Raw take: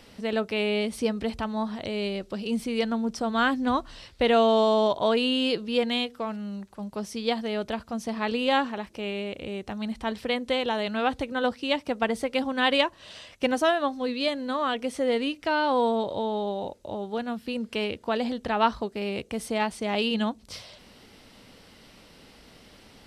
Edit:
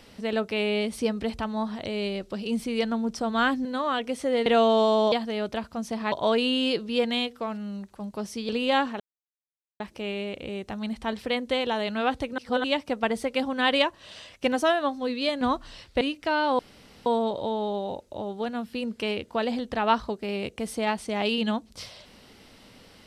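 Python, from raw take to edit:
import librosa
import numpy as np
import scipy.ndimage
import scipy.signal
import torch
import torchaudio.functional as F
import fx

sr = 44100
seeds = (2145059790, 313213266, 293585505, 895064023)

y = fx.edit(x, sr, fx.swap(start_s=3.65, length_s=0.6, other_s=14.4, other_length_s=0.81),
    fx.move(start_s=7.28, length_s=1.0, to_s=4.91),
    fx.insert_silence(at_s=8.79, length_s=0.8),
    fx.reverse_span(start_s=11.37, length_s=0.26),
    fx.insert_room_tone(at_s=15.79, length_s=0.47), tone=tone)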